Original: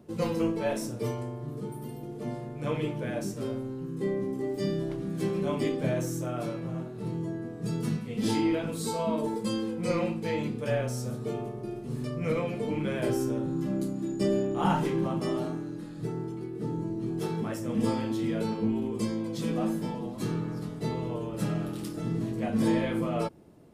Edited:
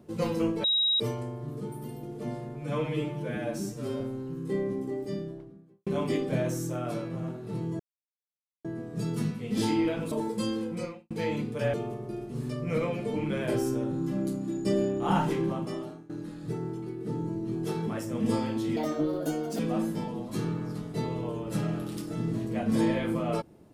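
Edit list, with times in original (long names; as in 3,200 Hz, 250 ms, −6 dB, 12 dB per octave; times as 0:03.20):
0:00.64–0:01.00: beep over 3,820 Hz −22 dBFS
0:02.55–0:03.52: time-stretch 1.5×
0:04.11–0:05.38: fade out and dull
0:07.31: splice in silence 0.85 s
0:08.78–0:09.18: remove
0:09.77–0:10.17: fade out quadratic
0:10.80–0:11.28: remove
0:14.95–0:15.64: fade out, to −21 dB
0:18.31–0:19.46: play speed 139%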